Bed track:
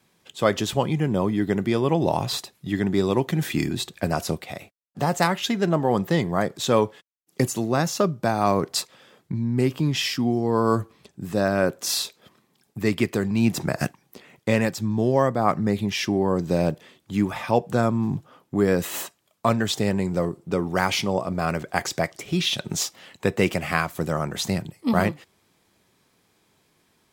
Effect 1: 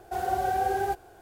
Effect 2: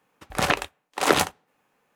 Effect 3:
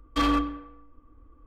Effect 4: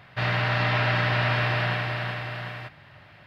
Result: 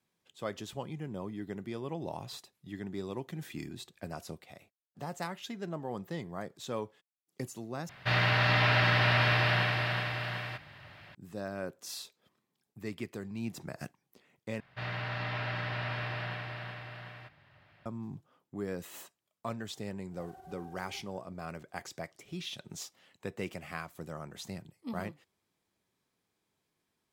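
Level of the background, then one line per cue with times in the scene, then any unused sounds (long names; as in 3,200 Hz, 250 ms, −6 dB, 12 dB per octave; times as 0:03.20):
bed track −17 dB
0:07.89: overwrite with 4 −3 dB + high-shelf EQ 3,000 Hz +6.5 dB
0:14.60: overwrite with 4 −12 dB
0:20.07: mix in 1 −12 dB, fades 0.10 s + downward compressor 16 to 1, threshold −37 dBFS
not used: 2, 3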